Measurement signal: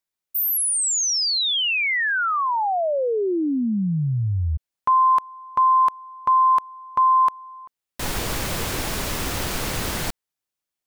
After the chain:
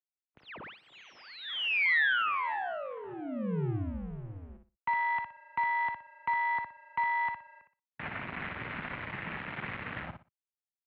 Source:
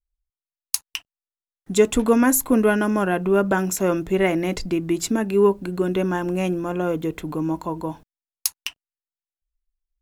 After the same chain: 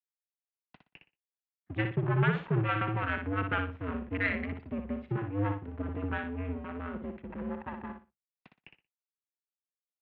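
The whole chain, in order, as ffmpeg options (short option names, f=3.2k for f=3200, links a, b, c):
-af "afwtdn=0.0316,equalizer=f=250:t=o:w=1:g=5,equalizer=f=500:t=o:w=1:g=-11,equalizer=f=2k:t=o:w=1:g=9,aeval=exprs='max(val(0),0)':c=same,aecho=1:1:60|120|180:0.473|0.104|0.0229,highpass=f=200:t=q:w=0.5412,highpass=f=200:t=q:w=1.307,lowpass=f=3.1k:t=q:w=0.5176,lowpass=f=3.1k:t=q:w=0.7071,lowpass=f=3.1k:t=q:w=1.932,afreqshift=-100,volume=-6.5dB"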